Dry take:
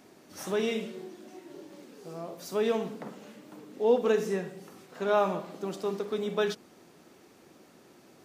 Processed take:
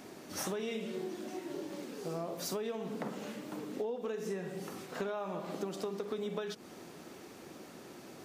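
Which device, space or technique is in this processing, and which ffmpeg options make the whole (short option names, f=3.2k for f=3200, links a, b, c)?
serial compression, leveller first: -af "acompressor=threshold=-30dB:ratio=3,acompressor=threshold=-40dB:ratio=10,volume=6dB"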